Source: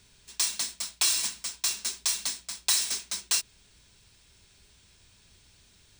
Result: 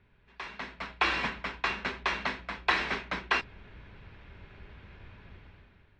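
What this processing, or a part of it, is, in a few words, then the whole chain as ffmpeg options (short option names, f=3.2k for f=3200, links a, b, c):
action camera in a waterproof case: -af "lowpass=f=2.2k:w=0.5412,lowpass=f=2.2k:w=1.3066,dynaudnorm=f=300:g=5:m=15dB,volume=-1.5dB" -ar 32000 -c:a aac -b:a 48k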